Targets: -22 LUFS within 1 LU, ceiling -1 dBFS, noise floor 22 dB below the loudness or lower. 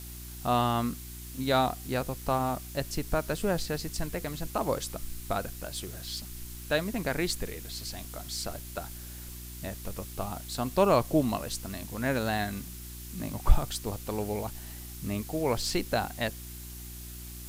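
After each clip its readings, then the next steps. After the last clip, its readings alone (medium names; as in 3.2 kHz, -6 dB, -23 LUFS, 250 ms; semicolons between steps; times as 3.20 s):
hum 60 Hz; highest harmonic 360 Hz; hum level -41 dBFS; noise floor -43 dBFS; noise floor target -54 dBFS; loudness -32.0 LUFS; peak level -7.0 dBFS; loudness target -22.0 LUFS
-> de-hum 60 Hz, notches 6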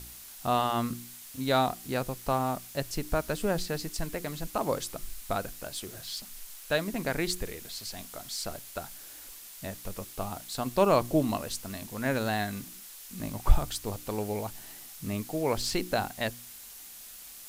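hum not found; noise floor -47 dBFS; noise floor target -54 dBFS
-> noise reduction 7 dB, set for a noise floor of -47 dBFS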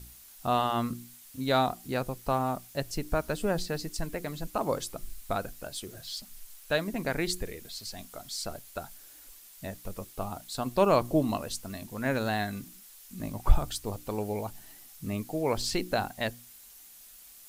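noise floor -52 dBFS; noise floor target -54 dBFS
-> noise reduction 6 dB, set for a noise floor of -52 dBFS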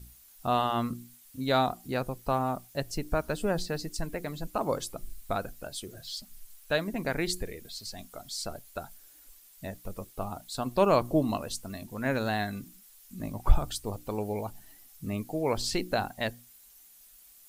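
noise floor -56 dBFS; loudness -32.0 LUFS; peak level -7.5 dBFS; loudness target -22.0 LUFS
-> trim +10 dB; peak limiter -1 dBFS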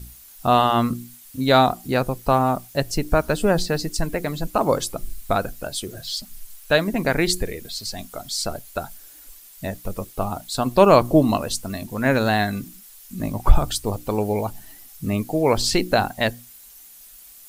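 loudness -22.0 LUFS; peak level -1.0 dBFS; noise floor -46 dBFS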